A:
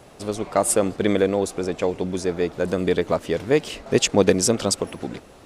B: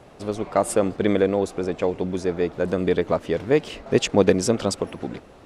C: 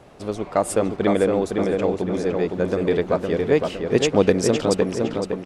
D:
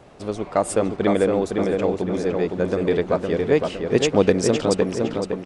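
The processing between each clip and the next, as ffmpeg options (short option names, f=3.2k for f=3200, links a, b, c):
-af "highshelf=f=4.9k:g=-11"
-filter_complex "[0:a]asplit=2[a][b];[b]adelay=511,lowpass=f=3.2k:p=1,volume=-4dB,asplit=2[c][d];[d]adelay=511,lowpass=f=3.2k:p=1,volume=0.47,asplit=2[e][f];[f]adelay=511,lowpass=f=3.2k:p=1,volume=0.47,asplit=2[g][h];[h]adelay=511,lowpass=f=3.2k:p=1,volume=0.47,asplit=2[i][j];[j]adelay=511,lowpass=f=3.2k:p=1,volume=0.47,asplit=2[k][l];[l]adelay=511,lowpass=f=3.2k:p=1,volume=0.47[m];[a][c][e][g][i][k][m]amix=inputs=7:normalize=0"
-af "aresample=22050,aresample=44100"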